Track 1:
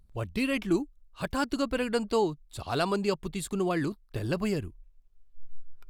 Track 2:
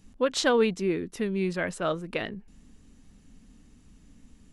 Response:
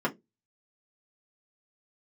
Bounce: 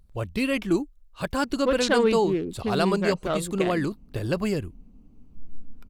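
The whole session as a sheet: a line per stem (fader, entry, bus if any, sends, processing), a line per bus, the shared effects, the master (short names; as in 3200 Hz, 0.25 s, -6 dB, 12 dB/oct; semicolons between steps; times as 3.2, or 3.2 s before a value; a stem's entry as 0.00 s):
+3.0 dB, 0.00 s, no send, bell 520 Hz +3.5 dB 0.21 oct
+1.5 dB, 1.45 s, no send, Wiener smoothing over 25 samples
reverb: off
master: dry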